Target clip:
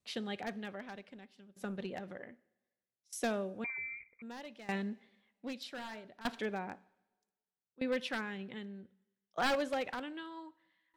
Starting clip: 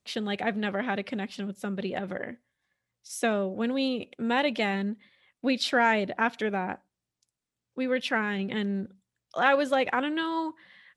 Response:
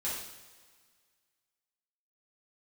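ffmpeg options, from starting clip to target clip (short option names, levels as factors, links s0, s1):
-filter_complex "[0:a]asettb=1/sr,asplit=3[s0][s1][s2];[s0]atrim=end=5.634[s3];[s1]atrim=start=5.63:end=6.08,asetpts=PTS-STARTPTS,afade=t=in:d=0.004:c=qsin,afade=t=out:st=0.446:d=0.004:c=qsin,bandreject=f=50.19:t=h:w=4,bandreject=f=100.38:t=h:w=4,bandreject=f=150.57:t=h:w=4,bandreject=f=200.76:t=h:w=4,bandreject=f=250.95:t=h:w=4,bandreject=f=301.14:t=h:w=4,bandreject=f=351.33:t=h:w=4,bandreject=f=401.52:t=h:w=4,bandreject=f=451.71:t=h:w=4,bandreject=f=501.9:t=h:w=4,bandreject=f=552.09:t=h:w=4,bandreject=f=602.28:t=h:w=4,bandreject=f=652.47:t=h:w=4,bandreject=f=702.66:t=h:w=4,bandreject=f=752.85:t=h:w=4,bandreject=f=803.04:t=h:w=4,bandreject=f=853.23:t=h:w=4,bandreject=f=903.42:t=h:w=4,bandreject=f=953.61:t=h:w=4,bandreject=f=1003.8:t=h:w=4,bandreject=f=1053.99:t=h:w=4,bandreject=f=1104.18:t=h:w=4,bandreject=f=1154.37:t=h:w=4,bandreject=f=1204.56:t=h:w=4,bandreject=f=1254.75:t=h:w=4,bandreject=f=1304.94:t=h:w=4,bandreject=f=1355.13:t=h:w=4,bandreject=f=1405.32:t=h:w=4,bandreject=f=1455.51:t=h:w=4,bandreject=f=1505.7:t=h:w=4,bandreject=f=1555.89:t=h:w=4,bandreject=f=1606.08:t=h:w=4,bandreject=f=1656.27:t=h:w=4,bandreject=f=1706.46:t=h:w=4[s4];[s2]atrim=start=6.076[s5];[s3][s4]acrossfade=d=0.004:c1=hsin:c2=qsin[s6];[s6][s5]acrossfade=d=0.004:c1=qsin:c2=hsin,aeval=exprs='0.119*(abs(mod(val(0)/0.119+3,4)-2)-1)':c=same,asettb=1/sr,asplit=3[s7][s8][s9];[s7]atrim=end=0.814[s10];[s8]atrim=start=0.81:end=1.87,asetpts=PTS-STARTPTS,afade=t=in:d=0.004:c=qsin,afade=t=out:st=1.056:d=0.004:c=qsin,aeval=exprs='0.126*(cos(1*acos(clip(val(0)/0.126,-1,1)))-cos(1*PI/2))+0.00398*(cos(7*acos(clip(val(0)/0.126,-1,1)))-cos(7*PI/2))':c=same[s11];[s9]atrim=start=1.866[s12];[s10][s11]acrossfade=d=0.004:c1=hsin:c2=qsin[s13];[s13][s12]acrossfade=d=0.004:c1=qsin:c2=hsin,asplit=2[s14][s15];[1:a]atrim=start_sample=2205[s16];[s15][s16]afir=irnorm=-1:irlink=0,volume=0.0944[s17];[s14][s17]amix=inputs=2:normalize=0,asettb=1/sr,asplit=3[s18][s19][s20];[s18]atrim=end=3.644[s21];[s19]atrim=start=3.64:end=4.22,asetpts=PTS-STARTPTS,afade=t=in:d=0.004:c=qsin,afade=t=out:st=0.576:d=0.004:c=qsin,lowpass=f=2200:t=q:w=0.5098,lowpass=f=2200:t=q:w=0.6013,lowpass=f=2200:t=q:w=0.9,lowpass=f=2200:t=q:w=2.563,afreqshift=-2600[s22];[s20]atrim=start=4.216[s23];[s21][s22]acrossfade=d=0.004:c1=hsin:c2=qsin[s24];[s24][s23]acrossfade=d=0.004:c1=qsin:c2=hsin,aeval=exprs='val(0)*pow(10,-19*if(lt(mod(0.64*n/s,1),2*abs(0.64)/1000),1-mod(0.64*n/s,1)/(2*abs(0.64)/1000),(mod(0.64*n/s,1)-2*abs(0.64)/1000)/(1-2*abs(0.64)/1000))/20)':c=same,volume=0.501"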